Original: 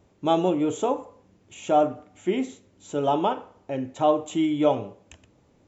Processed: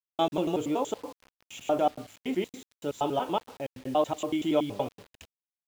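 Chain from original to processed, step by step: slices played last to first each 94 ms, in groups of 2; bit crusher 8-bit; peaking EQ 3.5 kHz +4.5 dB 1.5 oct; trim -5 dB

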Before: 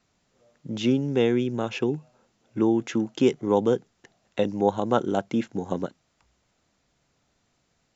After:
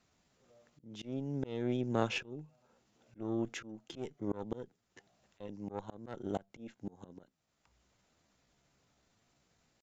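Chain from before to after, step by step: valve stage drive 12 dB, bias 0.8; slow attack 569 ms; tempo 0.81×; trim +2 dB

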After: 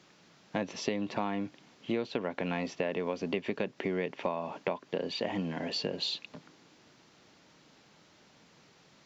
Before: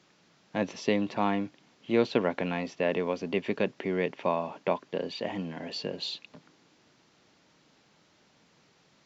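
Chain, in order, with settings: compression 10:1, threshold -31 dBFS, peak gain reduction 13.5 dB; trim +3 dB

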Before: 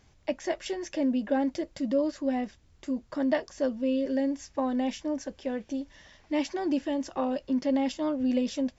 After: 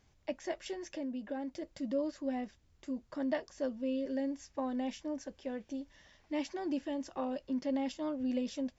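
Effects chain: 0.81–1.62 s: compression 2:1, threshold -32 dBFS, peak gain reduction 6 dB; trim -7.5 dB

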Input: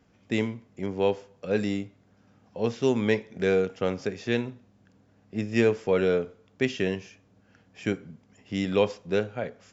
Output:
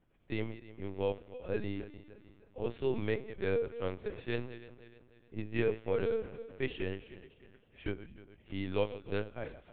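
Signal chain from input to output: backward echo that repeats 153 ms, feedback 64%, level -14 dB; LPC vocoder at 8 kHz pitch kept; trim -9 dB

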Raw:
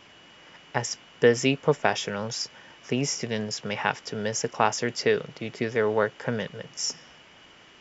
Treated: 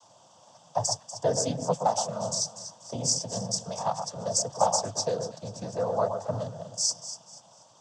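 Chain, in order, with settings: noise-vocoded speech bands 16; FFT filter 170 Hz 0 dB, 390 Hz -14 dB, 600 Hz +7 dB, 960 Hz +3 dB, 2.1 kHz -26 dB, 5.6 kHz +8 dB; echo whose repeats swap between lows and highs 121 ms, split 1.6 kHz, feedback 55%, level -7 dB; trim -3 dB

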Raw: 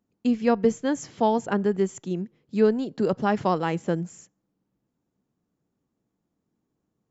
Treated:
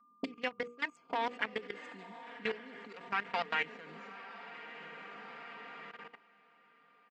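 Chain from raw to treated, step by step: local Wiener filter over 25 samples; Doppler pass-by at 2.56 s, 24 m/s, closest 22 m; dynamic bell 2.3 kHz, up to +5 dB, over -45 dBFS, Q 1.3; compression 12:1, threshold -33 dBFS, peak gain reduction 19 dB; auto-wah 260–2000 Hz, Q 2.5, up, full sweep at -40 dBFS; echo that smears into a reverb 1096 ms, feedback 50%, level -9 dB; whistle 1.2 kHz -76 dBFS; comb 4.3 ms, depth 87%; level held to a coarse grid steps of 17 dB; treble shelf 3.8 kHz +10.5 dB; hum notches 60/120/180/240/300/360/420/480 Hz; trim +18 dB

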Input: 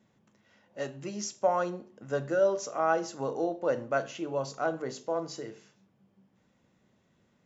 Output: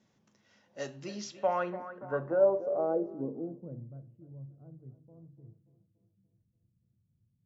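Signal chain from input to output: tape echo 289 ms, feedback 56%, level -13 dB, low-pass 4.2 kHz; low-pass sweep 5.8 kHz -> 110 Hz, 0.94–4.03 s; trim -3.5 dB

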